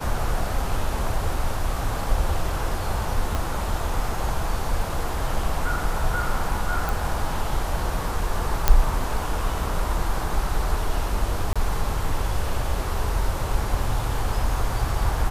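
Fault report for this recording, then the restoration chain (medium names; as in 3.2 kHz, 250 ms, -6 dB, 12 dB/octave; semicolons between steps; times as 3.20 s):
3.35 s: pop
6.89 s: pop
8.68 s: pop -2 dBFS
11.53–11.56 s: dropout 26 ms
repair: de-click; interpolate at 11.53 s, 26 ms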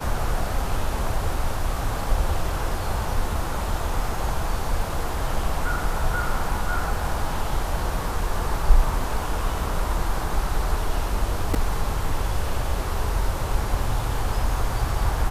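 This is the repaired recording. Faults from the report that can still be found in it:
3.35 s: pop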